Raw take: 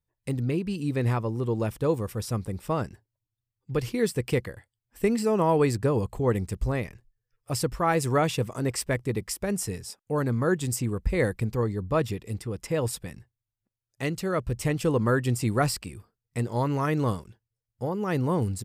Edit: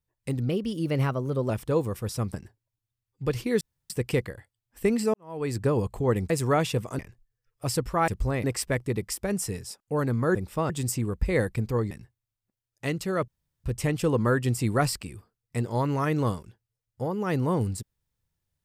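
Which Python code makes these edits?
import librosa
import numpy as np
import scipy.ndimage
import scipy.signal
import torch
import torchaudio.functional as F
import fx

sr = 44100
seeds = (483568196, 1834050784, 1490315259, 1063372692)

y = fx.edit(x, sr, fx.speed_span(start_s=0.49, length_s=1.14, speed=1.13),
    fx.move(start_s=2.47, length_s=0.35, to_s=10.54),
    fx.insert_room_tone(at_s=4.09, length_s=0.29),
    fx.fade_in_span(start_s=5.33, length_s=0.47, curve='qua'),
    fx.swap(start_s=6.49, length_s=0.36, other_s=7.94, other_length_s=0.69),
    fx.cut(start_s=11.75, length_s=1.33),
    fx.insert_room_tone(at_s=14.45, length_s=0.36), tone=tone)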